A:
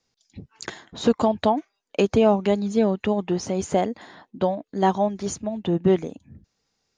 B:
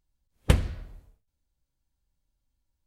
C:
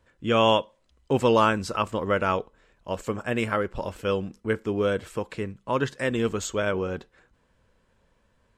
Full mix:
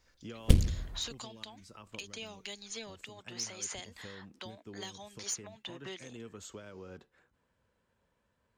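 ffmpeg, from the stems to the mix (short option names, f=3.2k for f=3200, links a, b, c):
-filter_complex "[0:a]highpass=1.2k,equalizer=f=2k:w=1.5:g=4.5,volume=0.5dB[a];[1:a]volume=2.5dB[b];[2:a]highpass=59,acompressor=threshold=-33dB:ratio=5,bandreject=f=1.1k:w=28,volume=-10dB[c];[a][c]amix=inputs=2:normalize=0,acrossover=split=310|3000[d][e][f];[e]acompressor=threshold=-46dB:ratio=6[g];[d][g][f]amix=inputs=3:normalize=0,alimiter=limit=-24dB:level=0:latency=1:release=431,volume=0dB[h];[b][h]amix=inputs=2:normalize=0,equalizer=f=1.1k:w=1.5:g=2,aeval=exprs='clip(val(0),-1,0.0398)':c=same,acrossover=split=430|3000[i][j][k];[j]acompressor=threshold=-48dB:ratio=6[l];[i][l][k]amix=inputs=3:normalize=0"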